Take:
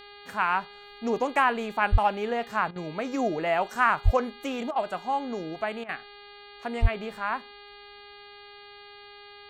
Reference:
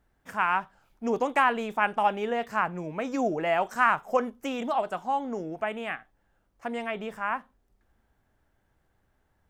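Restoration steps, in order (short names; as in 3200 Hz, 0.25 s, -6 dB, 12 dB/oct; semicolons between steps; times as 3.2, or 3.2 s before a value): de-hum 408.4 Hz, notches 11; 1.91–2.03 HPF 140 Hz 24 dB/oct; 4.04–4.16 HPF 140 Hz 24 dB/oct; 6.81–6.93 HPF 140 Hz 24 dB/oct; interpolate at 2.71/4.71/5.84, 47 ms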